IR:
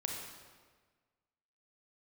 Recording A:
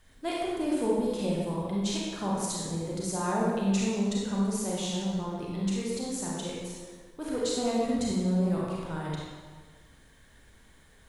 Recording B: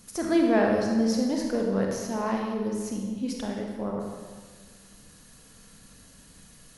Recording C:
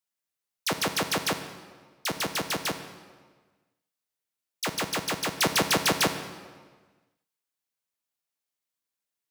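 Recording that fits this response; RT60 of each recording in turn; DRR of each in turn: B; 1.5, 1.5, 1.5 seconds; −5.0, 0.0, 8.0 decibels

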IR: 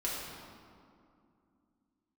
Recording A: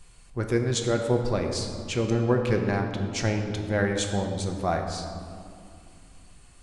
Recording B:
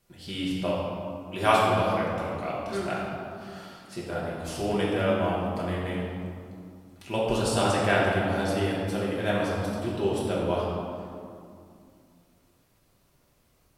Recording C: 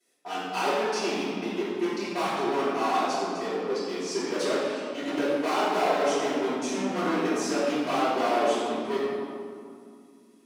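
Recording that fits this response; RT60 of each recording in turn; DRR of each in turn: B; 2.4, 2.4, 2.4 seconds; 3.0, −7.0, −16.0 decibels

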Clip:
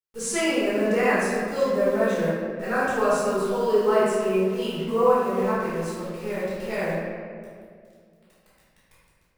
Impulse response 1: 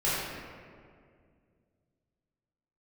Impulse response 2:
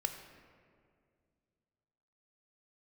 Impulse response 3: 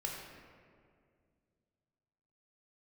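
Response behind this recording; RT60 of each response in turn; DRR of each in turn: 1; 2.1, 2.2, 2.1 seconds; −10.5, 6.0, −1.5 decibels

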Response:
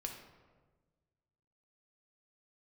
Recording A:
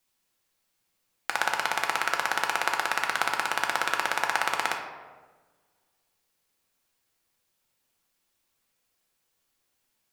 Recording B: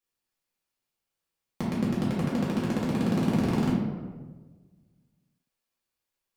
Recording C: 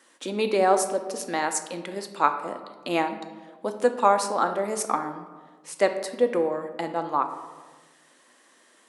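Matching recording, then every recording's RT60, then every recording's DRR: A; 1.4, 1.4, 1.4 seconds; 1.5, −8.0, 6.5 decibels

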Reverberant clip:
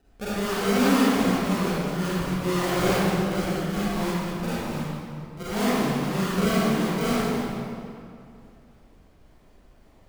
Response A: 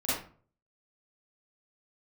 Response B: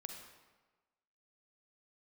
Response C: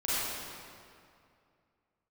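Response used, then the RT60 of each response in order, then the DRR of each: C; 0.45, 1.3, 2.4 seconds; −11.5, 3.0, −11.5 decibels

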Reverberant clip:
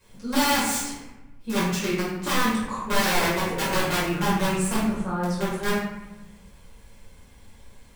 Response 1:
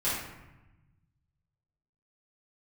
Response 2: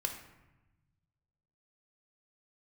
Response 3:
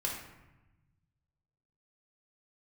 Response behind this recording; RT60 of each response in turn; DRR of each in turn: 1; 1.0, 1.0, 1.0 seconds; −11.0, 4.0, −2.0 decibels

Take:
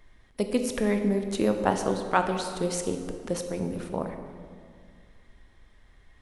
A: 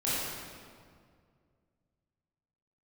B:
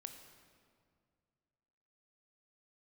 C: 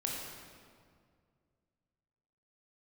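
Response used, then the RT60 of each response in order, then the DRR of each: B; 2.1, 2.1, 2.1 seconds; −10.5, 6.0, −2.5 decibels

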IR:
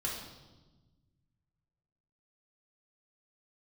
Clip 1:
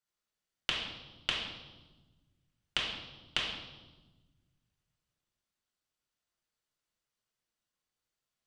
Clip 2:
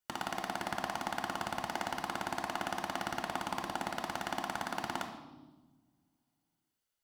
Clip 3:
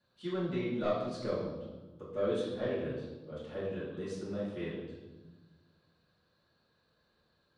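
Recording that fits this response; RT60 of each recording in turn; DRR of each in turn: 1; 1.2, 1.2, 1.2 seconds; −4.0, 3.5, −9.0 decibels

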